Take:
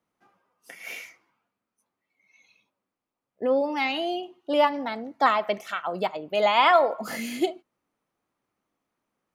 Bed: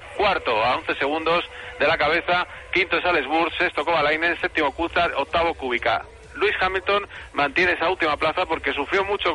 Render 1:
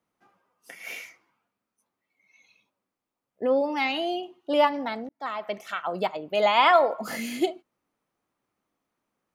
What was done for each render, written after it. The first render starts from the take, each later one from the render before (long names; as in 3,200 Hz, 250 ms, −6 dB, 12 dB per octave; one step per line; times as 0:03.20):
0:05.09–0:05.83: fade in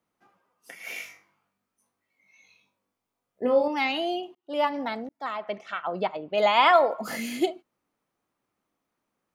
0:00.93–0:03.68: flutter between parallel walls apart 3.5 metres, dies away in 0.29 s
0:04.35–0:04.80: fade in
0:05.37–0:06.38: high-frequency loss of the air 140 metres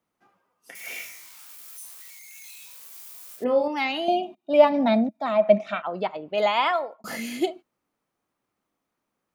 0:00.75–0:03.44: spike at every zero crossing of −35.5 dBFS
0:04.08–0:05.82: hollow resonant body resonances 210/630/2,400/3,700 Hz, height 18 dB
0:06.42–0:07.04: fade out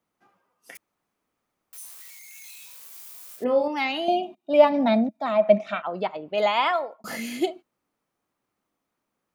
0:00.77–0:01.73: fill with room tone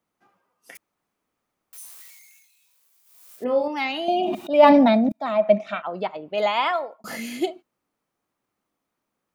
0:01.99–0:03.53: duck −19 dB, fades 0.49 s
0:04.11–0:05.12: level that may fall only so fast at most 21 dB per second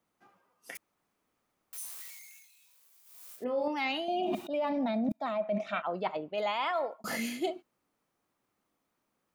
brickwall limiter −14 dBFS, peak gain reduction 11 dB
reversed playback
downward compressor 6 to 1, threshold −29 dBFS, peak gain reduction 11 dB
reversed playback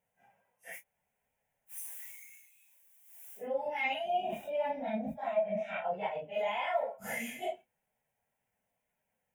random phases in long frames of 100 ms
phaser with its sweep stopped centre 1,200 Hz, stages 6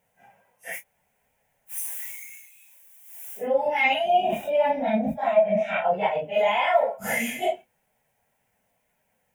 level +11.5 dB